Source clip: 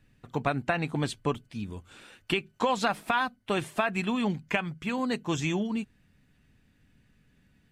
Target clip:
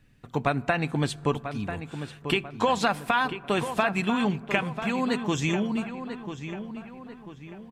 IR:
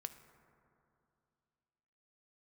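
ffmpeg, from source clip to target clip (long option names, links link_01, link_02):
-filter_complex "[0:a]asplit=2[link_01][link_02];[link_02]adelay=992,lowpass=frequency=2900:poles=1,volume=-9.5dB,asplit=2[link_03][link_04];[link_04]adelay=992,lowpass=frequency=2900:poles=1,volume=0.44,asplit=2[link_05][link_06];[link_06]adelay=992,lowpass=frequency=2900:poles=1,volume=0.44,asplit=2[link_07][link_08];[link_08]adelay=992,lowpass=frequency=2900:poles=1,volume=0.44,asplit=2[link_09][link_10];[link_10]adelay=992,lowpass=frequency=2900:poles=1,volume=0.44[link_11];[link_01][link_03][link_05][link_07][link_09][link_11]amix=inputs=6:normalize=0,asplit=2[link_12][link_13];[1:a]atrim=start_sample=2205[link_14];[link_13][link_14]afir=irnorm=-1:irlink=0,volume=-5dB[link_15];[link_12][link_15]amix=inputs=2:normalize=0"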